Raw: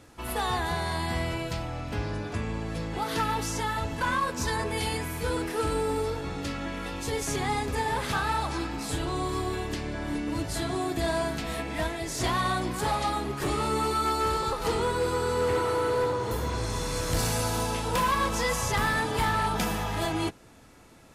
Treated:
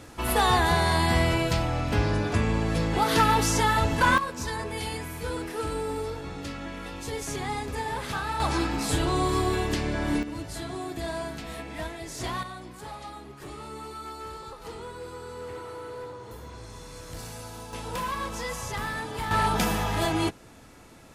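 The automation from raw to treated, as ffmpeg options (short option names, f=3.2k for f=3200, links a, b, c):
-af "asetnsamples=n=441:p=0,asendcmd='4.18 volume volume -3dB;8.4 volume volume 5dB;10.23 volume volume -5dB;12.43 volume volume -12.5dB;17.73 volume volume -6dB;19.31 volume volume 3dB',volume=7dB"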